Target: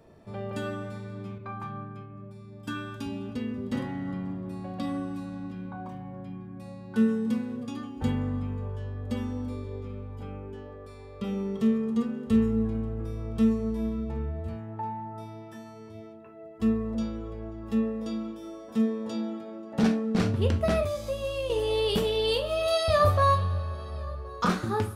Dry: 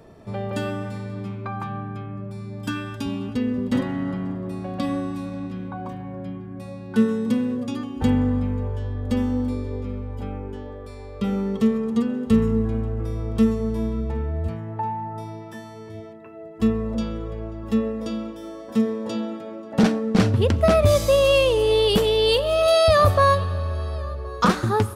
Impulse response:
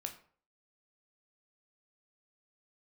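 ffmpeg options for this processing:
-filter_complex "[0:a]asettb=1/sr,asplit=3[link_01][link_02][link_03];[link_01]atrim=end=1.384[link_04];[link_02]atrim=start=1.38:end=2.71,asetpts=PTS-STARTPTS,afade=type=in:duration=0.004:curve=qsin,afade=type=out:start_time=1.326:duration=0.004:curve=qsin,agate=range=-33dB:threshold=-28dB:ratio=3:detection=peak[link_05];[link_03]atrim=start=2.706[link_06];[link_04][link_05]acrossfade=duration=0.004:curve1=hsin:curve2=qsin[link_07];[link_07][link_06]acrossfade=duration=0.004:curve1=qsin:curve2=hsin,asettb=1/sr,asplit=3[link_08][link_09][link_10];[link_08]atrim=end=20.824[link_11];[link_09]atrim=start=20.82:end=21.5,asetpts=PTS-STARTPTS,afade=type=in:duration=0.004:curve=qsin,afade=type=out:start_time=0.676:duration=0.004:curve=qsin,acrossover=split=340|5800[link_12][link_13][link_14];[link_12]acompressor=threshold=-29dB:ratio=4[link_15];[link_13]acompressor=threshold=-27dB:ratio=4[link_16];[link_14]acompressor=threshold=-47dB:ratio=4[link_17];[link_15][link_16][link_17]amix=inputs=3:normalize=0[link_18];[link_10]atrim=start=21.496[link_19];[link_11][link_18]acrossfade=duration=0.004:curve1=hsin:curve2=qsin[link_20];[link_20][link_19]acrossfade=duration=0.004:curve1=qsin:curve2=hsin[link_21];[1:a]atrim=start_sample=2205,atrim=end_sample=3528[link_22];[link_21][link_22]afir=irnorm=-1:irlink=0,volume=-5dB"

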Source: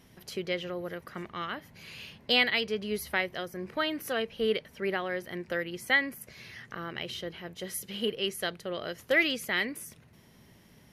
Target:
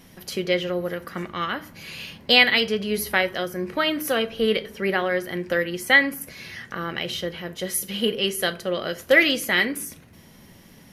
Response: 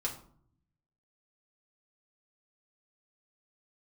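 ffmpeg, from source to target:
-filter_complex "[0:a]asplit=2[link_01][link_02];[1:a]atrim=start_sample=2205,asetrate=52920,aresample=44100,highshelf=frequency=6500:gain=8.5[link_03];[link_02][link_03]afir=irnorm=-1:irlink=0,volume=-5.5dB[link_04];[link_01][link_04]amix=inputs=2:normalize=0,volume=5dB"

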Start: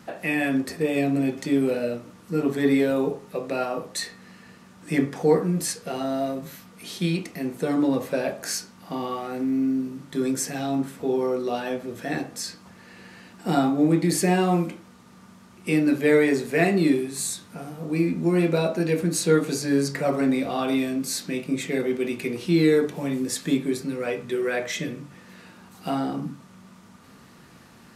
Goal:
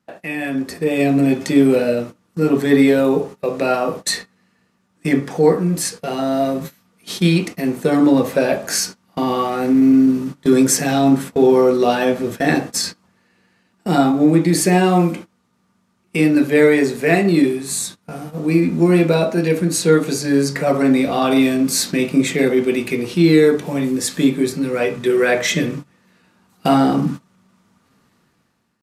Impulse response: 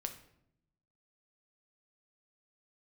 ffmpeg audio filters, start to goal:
-af "agate=range=-21dB:threshold=-37dB:ratio=16:detection=peak,atempo=0.97,dynaudnorm=framelen=370:gausssize=5:maxgain=16dB,volume=-1dB"

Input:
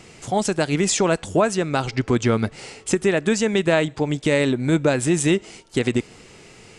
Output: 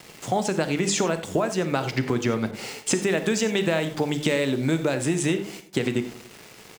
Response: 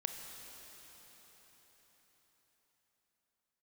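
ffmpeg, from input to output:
-filter_complex "[0:a]highpass=frequency=110:width=0.5412,highpass=frequency=110:width=1.3066,highshelf=frequency=9400:gain=-9.5,bandreject=frequency=50:width_type=h:width=6,bandreject=frequency=100:width_type=h:width=6,bandreject=frequency=150:width_type=h:width=6,bandreject=frequency=200:width_type=h:width=6,bandreject=frequency=250:width_type=h:width=6,bandreject=frequency=300:width_type=h:width=6,bandreject=frequency=350:width_type=h:width=6,bandreject=frequency=400:width_type=h:width=6,acompressor=threshold=-23dB:ratio=6,aeval=exprs='val(0)*gte(abs(val(0)),0.00668)':channel_layout=same,asplit=2[link_01][link_02];[link_02]adelay=93,lowpass=frequency=2000:poles=1,volume=-17.5dB,asplit=2[link_03][link_04];[link_04]adelay=93,lowpass=frequency=2000:poles=1,volume=0.51,asplit=2[link_05][link_06];[link_06]adelay=93,lowpass=frequency=2000:poles=1,volume=0.51,asplit=2[link_07][link_08];[link_08]adelay=93,lowpass=frequency=2000:poles=1,volume=0.51[link_09];[link_01][link_03][link_05][link_07][link_09]amix=inputs=5:normalize=0[link_10];[1:a]atrim=start_sample=2205,afade=type=out:start_time=0.15:duration=0.01,atrim=end_sample=7056[link_11];[link_10][link_11]afir=irnorm=-1:irlink=0,asettb=1/sr,asplit=3[link_12][link_13][link_14];[link_12]atrim=end=2.514[link_15];[link_13]atrim=start=2.51:end=4.95,asetpts=PTS-STARTPTS,afade=type=in:duration=0.004:curve=qsin,afade=type=out:start_time=2.436:duration=0.004:curve=qsin,adynamicequalizer=threshold=0.00794:dfrequency=2600:dqfactor=0.7:tfrequency=2600:tqfactor=0.7:attack=5:release=100:ratio=0.375:range=2:mode=boostabove:tftype=highshelf[link_16];[link_14]atrim=start=4.946[link_17];[link_15][link_16]acrossfade=duration=0.004:curve1=hsin:curve2=qsin[link_18];[link_18][link_17]acrossfade=duration=0.004:curve1=qsin:curve2=hsin,volume=4dB"

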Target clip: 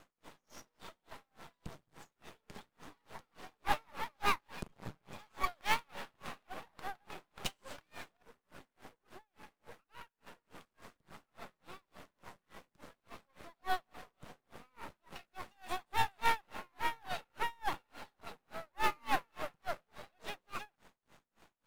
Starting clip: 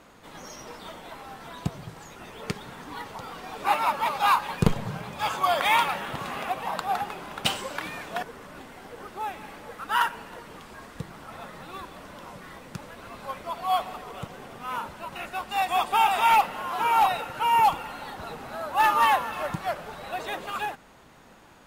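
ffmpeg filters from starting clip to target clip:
ffmpeg -i in.wav -filter_complex "[0:a]asplit=3[link_01][link_02][link_03];[link_01]afade=type=out:start_time=8.15:duration=0.02[link_04];[link_02]acompressor=threshold=-39dB:ratio=12,afade=type=in:start_time=8.15:duration=0.02,afade=type=out:start_time=10.26:duration=0.02[link_05];[link_03]afade=type=in:start_time=10.26:duration=0.02[link_06];[link_04][link_05][link_06]amix=inputs=3:normalize=0,aeval=exprs='max(val(0),0)':channel_layout=same,aeval=exprs='val(0)*pow(10,-37*(0.5-0.5*cos(2*PI*3.5*n/s))/20)':channel_layout=same,volume=-3.5dB" out.wav

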